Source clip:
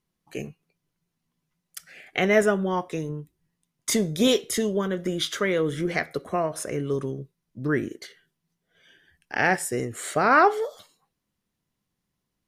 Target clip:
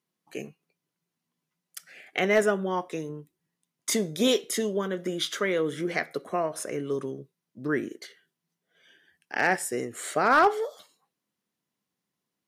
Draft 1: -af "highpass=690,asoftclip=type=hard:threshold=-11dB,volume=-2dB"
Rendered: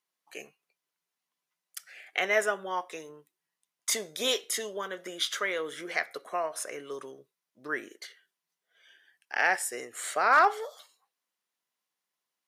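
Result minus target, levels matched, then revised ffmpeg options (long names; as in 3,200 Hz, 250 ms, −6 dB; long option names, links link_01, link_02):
250 Hz band −12.5 dB
-af "highpass=200,asoftclip=type=hard:threshold=-11dB,volume=-2dB"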